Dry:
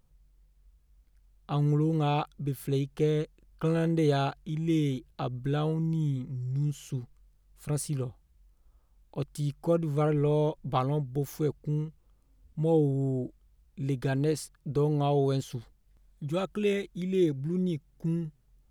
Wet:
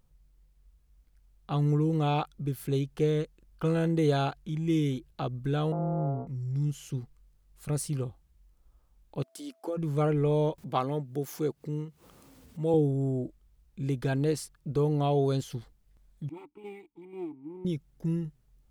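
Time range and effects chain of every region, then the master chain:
5.72–6.27 s: sorted samples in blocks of 64 samples + Chebyshev low-pass 1 kHz, order 4
9.22–9.76 s: elliptic high-pass 250 Hz, stop band 50 dB + compression 10:1, threshold -28 dBFS + whistle 660 Hz -65 dBFS
10.58–12.74 s: high-pass 180 Hz + upward compressor, threshold -37 dBFS
16.29–17.65 s: comb filter that takes the minimum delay 2.1 ms + vowel filter u + decimation joined by straight lines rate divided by 4×
whole clip: none

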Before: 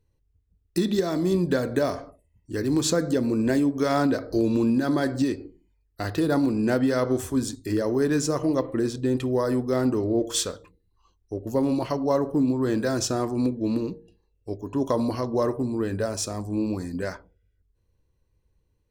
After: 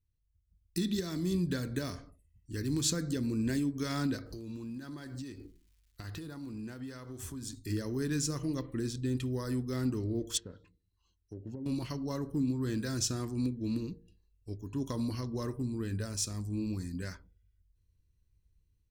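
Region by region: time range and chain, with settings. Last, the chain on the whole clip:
4.25–7.58 s: peaking EQ 920 Hz +6.5 dB 1.4 oct + compression 4:1, threshold -32 dBFS + crackle 490 per s -58 dBFS
10.37–11.66 s: low-pass that closes with the level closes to 540 Hz, closed at -23 dBFS + compression, threshold -27 dBFS + comb of notches 1.2 kHz
whole clip: amplifier tone stack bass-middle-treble 6-0-2; level rider gain up to 8.5 dB; trim +2.5 dB

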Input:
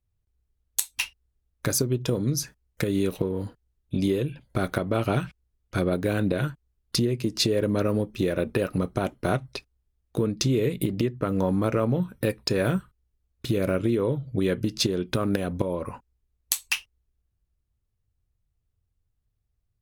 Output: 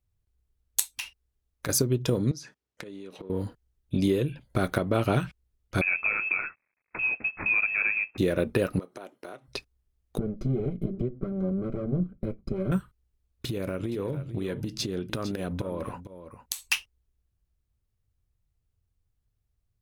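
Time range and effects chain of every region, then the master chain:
0.90–1.69 s: bass shelf 220 Hz -4.5 dB + compression 5:1, threshold -30 dBFS
2.31–3.30 s: band-pass 210–6200 Hz + compression 16:1, threshold -37 dBFS
5.81–8.18 s: CVSD coder 32 kbps + steep high-pass 280 Hz 48 dB/octave + frequency inversion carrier 2.9 kHz
8.79–9.48 s: Chebyshev high-pass 380 Hz + compression 4:1, threshold -40 dBFS
10.18–12.72 s: comb filter that takes the minimum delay 5.2 ms + boxcar filter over 49 samples
13.46–16.65 s: compression, threshold -27 dBFS + delay 455 ms -12 dB
whole clip: none

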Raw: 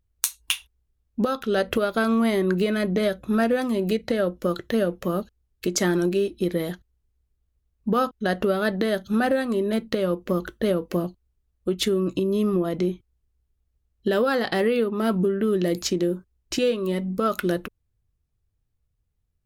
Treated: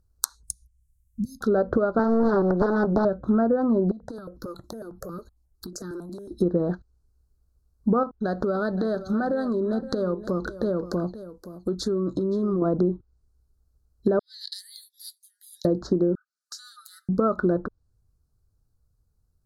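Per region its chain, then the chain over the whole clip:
0.43–1.41 s: inverse Chebyshev band-stop 670–1900 Hz, stop band 80 dB + treble shelf 4.7 kHz +8 dB
1.99–3.05 s: frequency weighting D + loudspeaker Doppler distortion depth 0.73 ms
3.91–6.31 s: compression 12:1, threshold -34 dBFS + stepped phaser 11 Hz 450–2500 Hz
8.03–12.62 s: compression 2.5:1, threshold -30 dBFS + delay 521 ms -14.5 dB
14.19–15.65 s: steep high-pass 2.2 kHz 96 dB/octave + frequency shift -120 Hz
16.15–17.09 s: brick-wall FIR high-pass 1.2 kHz + comb 7.4 ms, depth 45% + compression 2.5:1, threshold -44 dBFS
whole clip: Chebyshev band-stop 1.5–4.2 kHz, order 3; low-pass that closes with the level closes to 1.2 kHz, closed at -22.5 dBFS; compression, threshold -23 dBFS; trim +5.5 dB

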